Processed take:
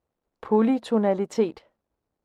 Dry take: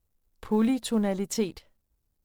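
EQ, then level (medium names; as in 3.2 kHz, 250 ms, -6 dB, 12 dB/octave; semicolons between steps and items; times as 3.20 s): band-pass filter 650 Hz, Q 0.73; +8.5 dB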